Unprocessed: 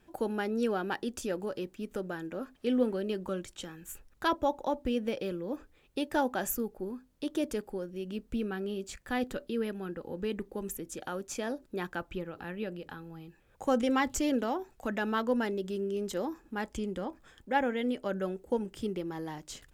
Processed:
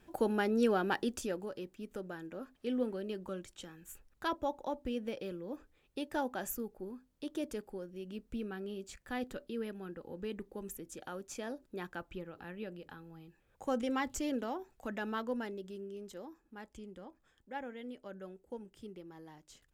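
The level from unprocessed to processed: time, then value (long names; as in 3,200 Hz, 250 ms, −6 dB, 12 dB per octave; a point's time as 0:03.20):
0:01.04 +1 dB
0:01.49 −6.5 dB
0:15.11 −6.5 dB
0:16.25 −14 dB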